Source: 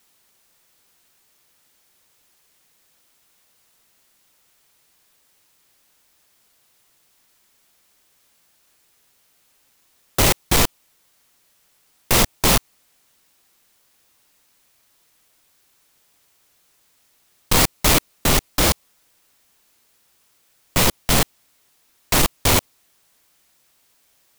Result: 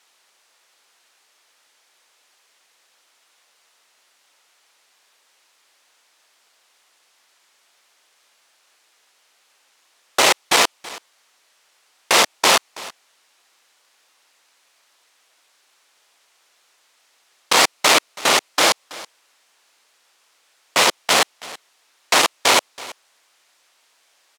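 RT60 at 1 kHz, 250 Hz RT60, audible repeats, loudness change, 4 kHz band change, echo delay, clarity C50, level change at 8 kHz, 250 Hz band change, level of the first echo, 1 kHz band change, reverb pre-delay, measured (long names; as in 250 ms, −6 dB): no reverb audible, no reverb audible, 1, +2.0 dB, +5.0 dB, 327 ms, no reverb audible, +1.0 dB, −6.5 dB, −19.5 dB, +5.5 dB, no reverb audible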